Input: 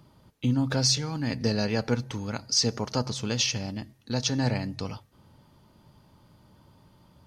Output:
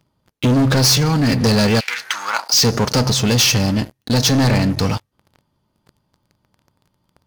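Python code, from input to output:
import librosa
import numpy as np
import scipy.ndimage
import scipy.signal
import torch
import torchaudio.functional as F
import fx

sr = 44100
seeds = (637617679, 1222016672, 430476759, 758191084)

y = fx.leveller(x, sr, passes=5)
y = fx.highpass_res(y, sr, hz=fx.line((1.79, 2600.0), (2.52, 790.0)), q=3.4, at=(1.79, 2.52), fade=0.02)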